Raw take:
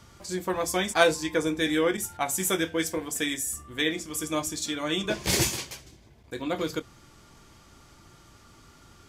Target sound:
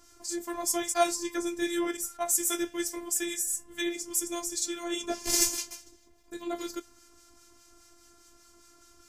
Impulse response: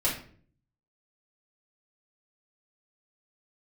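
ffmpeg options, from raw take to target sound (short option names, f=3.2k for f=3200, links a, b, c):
-filter_complex "[0:a]highshelf=f=4.6k:t=q:w=1.5:g=6.5,afftfilt=real='hypot(re,im)*cos(PI*b)':imag='0':win_size=512:overlap=0.75,acrossover=split=1400[a][b];[a]aeval=exprs='val(0)*(1-0.5/2+0.5/2*cos(2*PI*4.9*n/s))':c=same[c];[b]aeval=exprs='val(0)*(1-0.5/2-0.5/2*cos(2*PI*4.9*n/s))':c=same[d];[c][d]amix=inputs=2:normalize=0"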